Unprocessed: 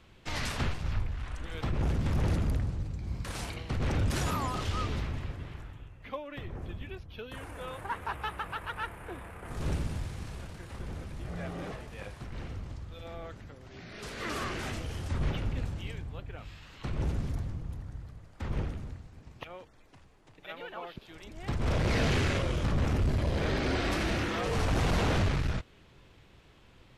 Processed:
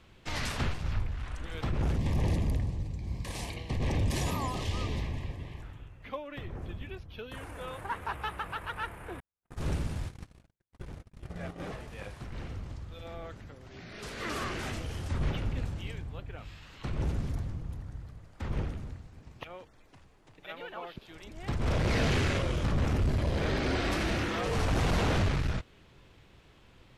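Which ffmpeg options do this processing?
-filter_complex "[0:a]asettb=1/sr,asplit=3[s0][s1][s2];[s0]atrim=end=1.964[s3];[s1]atrim=start=1.96:end=5.62,asetpts=PTS-STARTPTS,afade=t=in:d=0.004:c=qsin,afade=t=out:st=3.656:d=0.004:c=qsin,asuperstop=centerf=1400:order=4:qfactor=2.8[s4];[s2]atrim=start=5.616[s5];[s3][s4]acrossfade=d=0.004:c1=hsin:c2=qsin[s6];[s6][s5]acrossfade=d=0.004:c1=qsin:c2=hsin,asettb=1/sr,asplit=3[s7][s8][s9];[s7]atrim=end=9.204[s10];[s8]atrim=start=9.2:end=11.6,asetpts=PTS-STARTPTS,afade=t=in:d=0.004:c=qsin,afade=t=out:st=2.396:d=0.004:c=qsin,agate=range=0.00158:threshold=0.0126:ratio=16:release=100:detection=peak[s11];[s9]atrim=start=11.596[s12];[s10][s11]acrossfade=d=0.004:c1=hsin:c2=qsin[s13];[s13][s12]acrossfade=d=0.004:c1=qsin:c2=hsin"

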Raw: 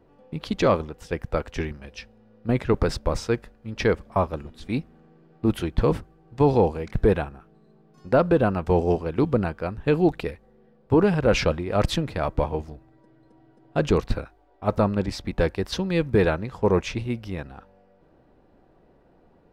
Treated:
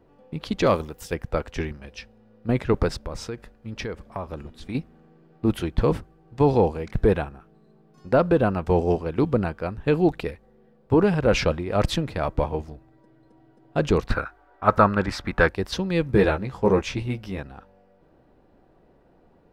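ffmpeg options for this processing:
-filter_complex "[0:a]asplit=3[s0][s1][s2];[s0]afade=t=out:st=0.65:d=0.02[s3];[s1]aemphasis=mode=production:type=50fm,afade=t=in:st=0.65:d=0.02,afade=t=out:st=1.13:d=0.02[s4];[s2]afade=t=in:st=1.13:d=0.02[s5];[s3][s4][s5]amix=inputs=3:normalize=0,asettb=1/sr,asplit=3[s6][s7][s8];[s6]atrim=end=2.884[s9];[s7]atrim=start=2.88:end=4.75,asetpts=PTS-STARTPTS,afade=t=in:d=0.004:c=qsin,afade=t=out:st=1.866:d=0.004:c=qsin,acompressor=threshold=0.0398:ratio=5:attack=3.2:release=140:knee=1:detection=peak[s10];[s8]atrim=start=4.746[s11];[s9][s10]acrossfade=d=0.004:c1=hsin:c2=qsin[s12];[s12][s11]acrossfade=d=0.004:c1=qsin:c2=hsin,asettb=1/sr,asplit=3[s13][s14][s15];[s13]atrim=end=14.094[s16];[s14]atrim=start=14.09:end=15.49,asetpts=PTS-STARTPTS,afade=t=in:d=0.004:c=qsin,afade=t=out:st=1.396:d=0.004:c=qsin,equalizer=f=1400:w=1.2:g=14.5[s17];[s15]atrim=start=15.486[s18];[s16][s17]acrossfade=d=0.004:c1=hsin:c2=qsin[s19];[s19][s18]acrossfade=d=0.004:c1=qsin:c2=hsin,asettb=1/sr,asplit=3[s20][s21][s22];[s20]atrim=end=16.084[s23];[s21]atrim=start=16.08:end=17.39,asetpts=PTS-STARTPTS,afade=t=in:d=0.004:c=qsin,afade=t=out:st=1.306:d=0.004:c=qsin,asplit=2[s24][s25];[s25]adelay=15,volume=0.562[s26];[s24][s26]amix=inputs=2:normalize=0,atrim=end_sample=57771[s27];[s22]atrim=start=17.386[s28];[s23][s27]acrossfade=d=0.004:c1=hsin:c2=qsin[s29];[s29][s28]acrossfade=d=0.004:c1=qsin:c2=hsin"

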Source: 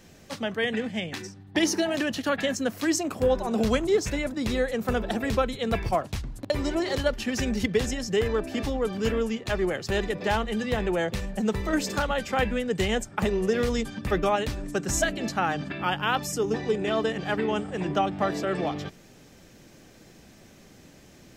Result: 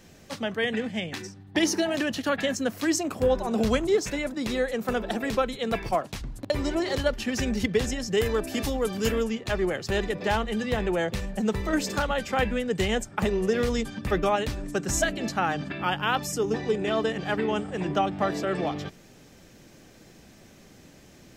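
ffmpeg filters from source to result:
-filter_complex "[0:a]asettb=1/sr,asplit=3[s0][s1][s2];[s0]atrim=end=3.954[s3];[s1]atrim=start=3.95:end=6.21,asetpts=PTS-STARTPTS,afade=t=in:d=0.004:c=qsin,afade=t=out:st=2.256:d=0.004:c=qsin,equalizer=f=72:w=1.2:g=-14[s4];[s2]atrim=start=6.206[s5];[s3][s4]acrossfade=d=0.004:c1=hsin:c2=qsin[s6];[s6][s5]acrossfade=d=0.004:c1=qsin:c2=hsin,asettb=1/sr,asplit=3[s7][s8][s9];[s7]atrim=end=8.174[s10];[s8]atrim=start=8.17:end=9.24,asetpts=PTS-STARTPTS,afade=t=in:d=0.004:c=qsin,afade=t=out:st=1.066:d=0.004:c=qsin,aemphasis=mode=production:type=50kf[s11];[s9]atrim=start=9.236[s12];[s10][s11]acrossfade=d=0.004:c1=hsin:c2=qsin[s13];[s13][s12]acrossfade=d=0.004:c1=qsin:c2=hsin"

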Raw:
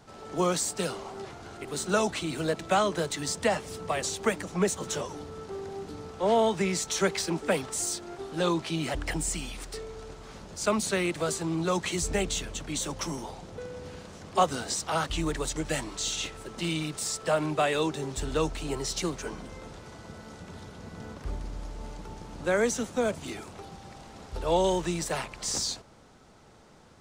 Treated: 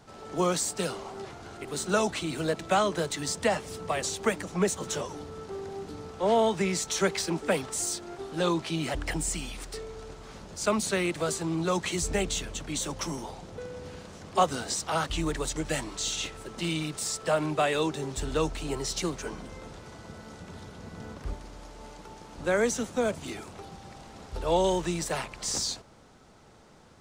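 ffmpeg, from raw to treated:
-filter_complex "[0:a]asettb=1/sr,asplit=3[s0][s1][s2];[s0]atrim=end=21.334[s3];[s1]atrim=start=21.33:end=22.38,asetpts=PTS-STARTPTS,afade=t=in:d=0.004:c=qsin,afade=t=out:st=1.046:d=0.004:c=qsin,lowshelf=f=210:g=-10.5[s4];[s2]atrim=start=22.376[s5];[s3][s4]acrossfade=d=0.004:c1=hsin:c2=qsin[s6];[s6][s5]acrossfade=d=0.004:c1=qsin:c2=hsin"

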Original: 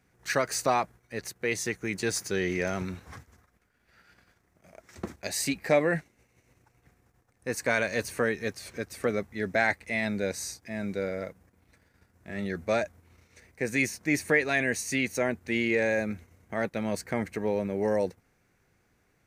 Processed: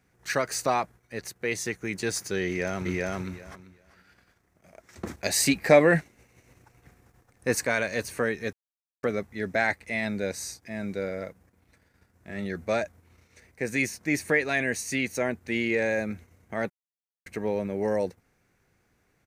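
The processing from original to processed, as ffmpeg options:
-filter_complex "[0:a]asplit=2[s0][s1];[s1]afade=t=in:st=2.46:d=0.01,afade=t=out:st=3.16:d=0.01,aecho=0:1:390|780|1170:0.944061|0.141609|0.0212414[s2];[s0][s2]amix=inputs=2:normalize=0,asettb=1/sr,asplit=3[s3][s4][s5];[s3]atrim=end=5.064[s6];[s4]atrim=start=5.06:end=7.65,asetpts=PTS-STARTPTS,afade=t=in:d=0.004:c=qsin,afade=t=out:st=2.586:d=0.004:c=qsin,acontrast=66[s7];[s5]atrim=start=7.646[s8];[s6][s7]acrossfade=d=0.004:c1=hsin:c2=qsin[s9];[s9][s8]acrossfade=d=0.004:c1=qsin:c2=hsin,asplit=5[s10][s11][s12][s13][s14];[s10]atrim=end=8.53,asetpts=PTS-STARTPTS,afade=t=out:st=8.526:d=0.004:c=hsin[s15];[s11]atrim=start=8.53:end=9.03,asetpts=PTS-STARTPTS,volume=0[s16];[s12]atrim=start=9.03:end=16.7,asetpts=PTS-STARTPTS,afade=t=in:d=0.004:c=hsin,afade=t=out:st=7.666:d=0.004:c=hsin[s17];[s13]atrim=start=16.7:end=17.26,asetpts=PTS-STARTPTS,volume=0[s18];[s14]atrim=start=17.26,asetpts=PTS-STARTPTS,afade=t=in:d=0.004:c=hsin[s19];[s15][s16][s17][s18][s19]concat=n=5:v=0:a=1"

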